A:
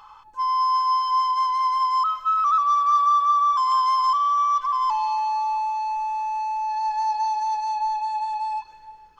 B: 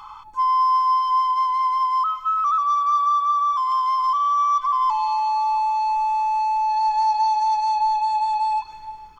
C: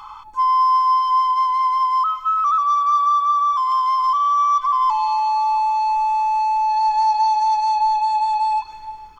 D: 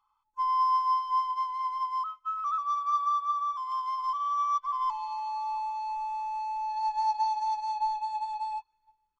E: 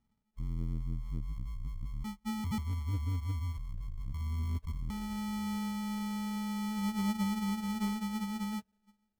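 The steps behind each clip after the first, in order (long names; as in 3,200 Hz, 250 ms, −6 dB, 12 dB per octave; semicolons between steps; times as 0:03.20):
in parallel at +1 dB: downward compressor, threshold −31 dBFS, peak gain reduction 14 dB; on the sum: comb filter 0.9 ms, depth 54%; speech leveller within 4 dB 2 s; level −4 dB
parametric band 140 Hz −4 dB 0.77 octaves; level +2.5 dB
expander for the loud parts 2.5 to 1, over −34 dBFS; level −8.5 dB
in parallel at −7.5 dB: hard clipping −33 dBFS, distortion −7 dB; on the sum: decimation without filtering 41×; saturating transformer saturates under 140 Hz; level −5 dB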